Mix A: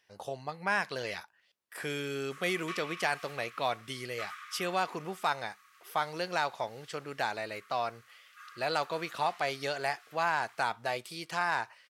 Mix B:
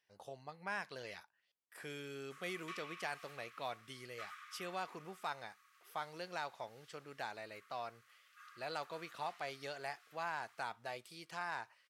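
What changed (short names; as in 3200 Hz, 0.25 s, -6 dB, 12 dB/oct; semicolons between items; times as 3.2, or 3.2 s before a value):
speech -11.5 dB; background -7.5 dB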